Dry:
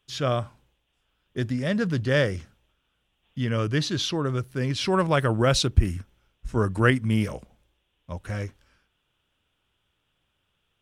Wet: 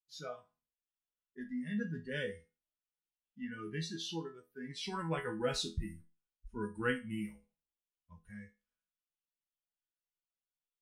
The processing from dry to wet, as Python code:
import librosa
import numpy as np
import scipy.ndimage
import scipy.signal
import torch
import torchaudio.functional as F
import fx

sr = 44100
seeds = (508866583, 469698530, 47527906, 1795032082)

y = fx.noise_reduce_blind(x, sr, reduce_db=20)
y = fx.resonator_bank(y, sr, root=52, chord='major', decay_s=0.27)
y = y * librosa.db_to_amplitude(2.0)